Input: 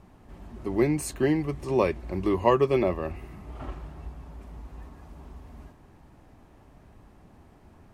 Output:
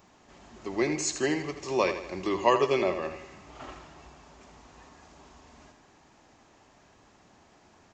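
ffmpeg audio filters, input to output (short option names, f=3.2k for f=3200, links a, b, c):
-af "aresample=16000,aresample=44100,aemphasis=mode=production:type=riaa,aecho=1:1:81|162|243|324|405:0.316|0.152|0.0729|0.035|0.0168"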